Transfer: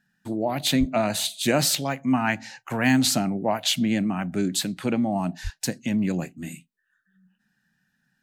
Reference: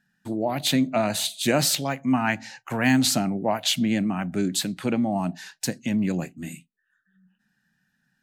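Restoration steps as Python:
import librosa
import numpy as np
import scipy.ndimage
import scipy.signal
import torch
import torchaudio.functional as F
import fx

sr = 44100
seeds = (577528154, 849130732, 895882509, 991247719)

y = fx.fix_deplosive(x, sr, at_s=(0.79, 5.43))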